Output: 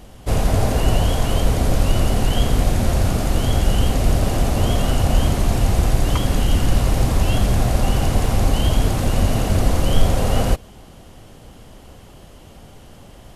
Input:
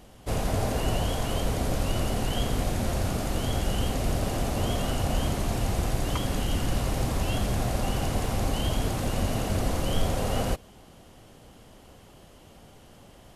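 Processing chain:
low-shelf EQ 99 Hz +6.5 dB
level +6.5 dB

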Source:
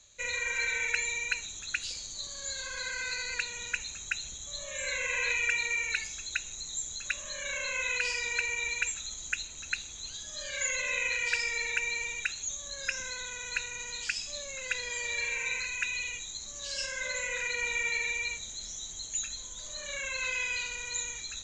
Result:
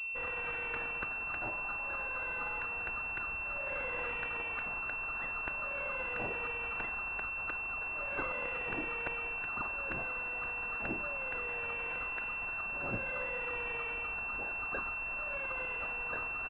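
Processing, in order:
tempo change 1.3×
switching amplifier with a slow clock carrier 2,700 Hz

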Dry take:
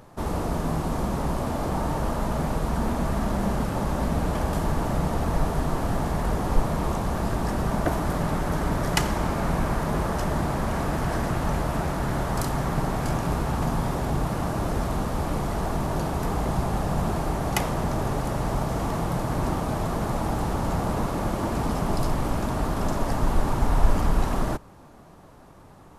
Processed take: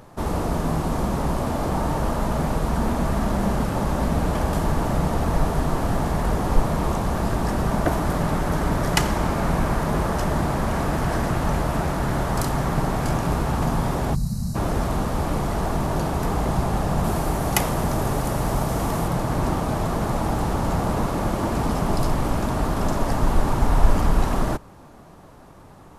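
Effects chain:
0:14.15–0:14.55: gain on a spectral selection 240–3,800 Hz −23 dB
0:17.04–0:19.08: high-shelf EQ 9,000 Hz +9.5 dB
level +3 dB

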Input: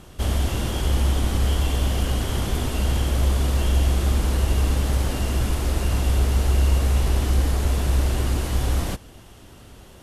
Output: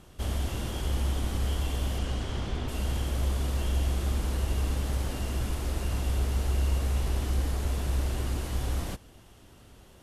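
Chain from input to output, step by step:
0:01.98–0:02.67: low-pass filter 8,800 Hz → 4,300 Hz 12 dB per octave
level −8 dB

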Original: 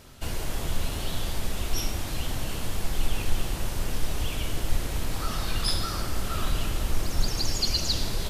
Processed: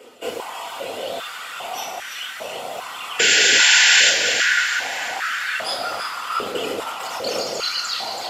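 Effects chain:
reverb reduction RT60 0.51 s
notch filter 1,700 Hz, Q 6.6
reverb reduction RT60 1.5 s
0:06.52–0:07.48: compressor whose output falls as the input rises −31 dBFS
flanger 0.51 Hz, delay 8.1 ms, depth 3.4 ms, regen +81%
tape wow and flutter 60 cents
0:03.19–0:04.10: sound drawn into the spectrogram noise 1,400–7,600 Hz −25 dBFS
echo with a time of its own for lows and highs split 2,400 Hz, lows 510 ms, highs 329 ms, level −8 dB
convolution reverb RT60 4.1 s, pre-delay 3 ms, DRR 0.5 dB
high-pass on a step sequencer 2.5 Hz 440–1,600 Hz
level +2 dB

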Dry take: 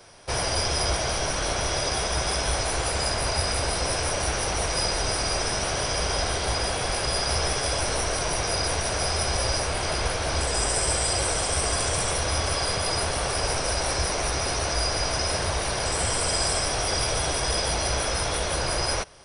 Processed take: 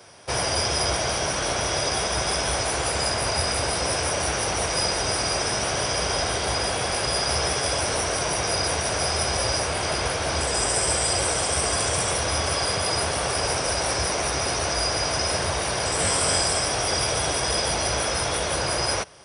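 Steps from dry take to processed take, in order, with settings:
high-pass filter 80 Hz 12 dB per octave
notch filter 4,100 Hz, Q 21
0:15.97–0:16.41: flutter between parallel walls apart 3.8 metres, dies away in 0.27 s
level +2 dB

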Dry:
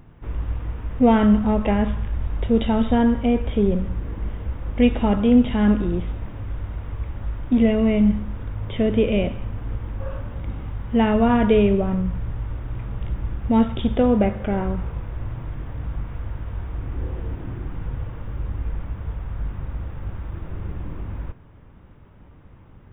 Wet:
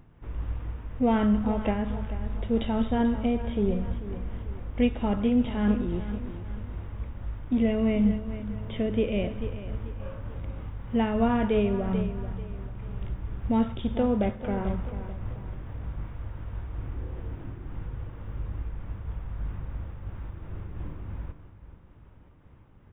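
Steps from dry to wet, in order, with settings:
on a send: repeating echo 439 ms, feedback 40%, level −12.5 dB
on the sum: amplitude modulation by smooth noise, depth 55%
level −4.5 dB

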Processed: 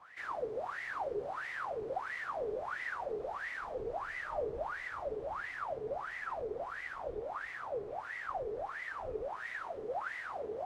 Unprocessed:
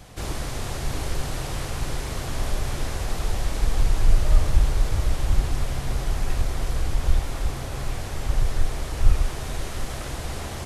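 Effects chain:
LFO wah 1.5 Hz 420–2,000 Hz, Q 19
level +12 dB

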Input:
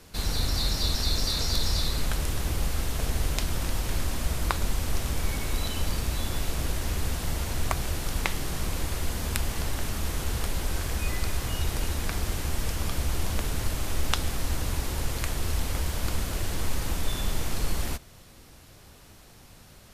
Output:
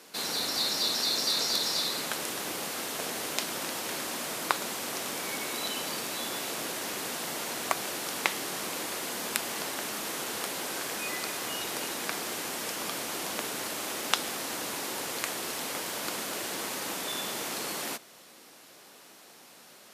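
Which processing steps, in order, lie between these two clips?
Bessel high-pass filter 330 Hz, order 4
level +2 dB

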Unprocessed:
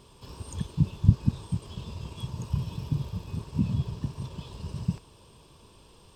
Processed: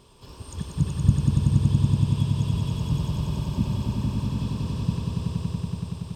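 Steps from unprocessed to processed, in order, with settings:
echo that builds up and dies away 94 ms, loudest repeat 5, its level −4 dB

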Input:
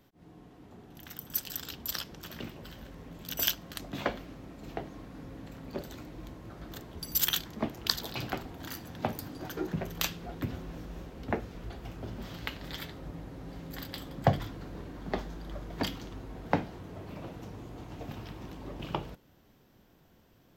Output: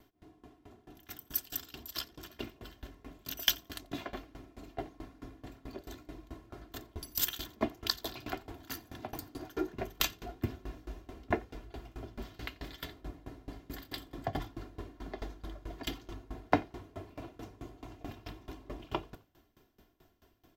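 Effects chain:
comb filter 2.9 ms, depth 64%
echo with shifted repeats 87 ms, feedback 34%, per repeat +50 Hz, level −18 dB
tremolo with a ramp in dB decaying 4.6 Hz, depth 22 dB
level +2 dB

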